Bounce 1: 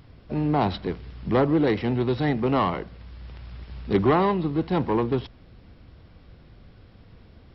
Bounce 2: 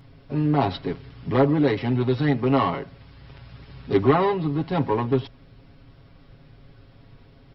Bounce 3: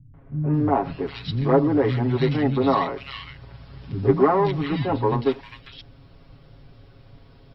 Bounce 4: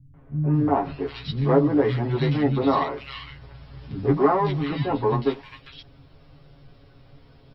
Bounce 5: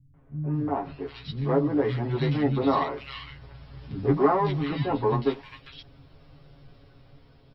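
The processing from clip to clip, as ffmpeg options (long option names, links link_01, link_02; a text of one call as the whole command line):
ffmpeg -i in.wav -af "aecho=1:1:7.3:0.85,volume=-1.5dB" out.wav
ffmpeg -i in.wav -filter_complex "[0:a]acrossover=split=210|1900[link_01][link_02][link_03];[link_02]adelay=140[link_04];[link_03]adelay=540[link_05];[link_01][link_04][link_05]amix=inputs=3:normalize=0,volume=2dB" out.wav
ffmpeg -i in.wav -filter_complex "[0:a]asplit=2[link_01][link_02];[link_02]adelay=14,volume=-4dB[link_03];[link_01][link_03]amix=inputs=2:normalize=0,volume=-2.5dB" out.wav
ffmpeg -i in.wav -af "dynaudnorm=framelen=750:gausssize=5:maxgain=11.5dB,volume=-7dB" out.wav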